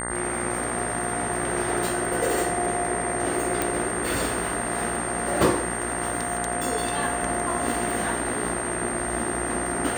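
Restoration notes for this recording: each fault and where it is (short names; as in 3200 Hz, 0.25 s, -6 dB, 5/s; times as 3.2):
buzz 60 Hz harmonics 34 -32 dBFS
crackle 42/s -31 dBFS
tone 8700 Hz -31 dBFS
3.62 pop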